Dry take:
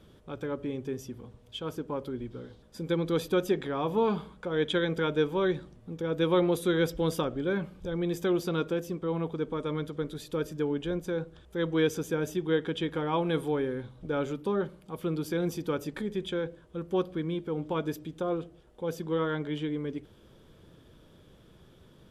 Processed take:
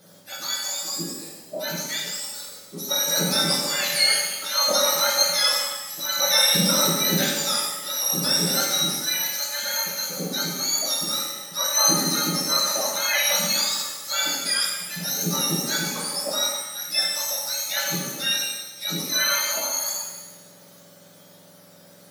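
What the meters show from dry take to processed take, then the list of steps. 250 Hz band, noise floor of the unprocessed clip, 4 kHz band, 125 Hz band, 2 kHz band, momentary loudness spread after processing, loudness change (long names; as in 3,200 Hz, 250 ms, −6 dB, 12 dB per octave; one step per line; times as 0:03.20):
−2.0 dB, −57 dBFS, +21.0 dB, 0.0 dB, +11.5 dB, 10 LU, +9.5 dB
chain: frequency axis turned over on the octave scale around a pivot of 1,400 Hz
reverb with rising layers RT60 1.1 s, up +7 semitones, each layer −8 dB, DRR −3 dB
level +7 dB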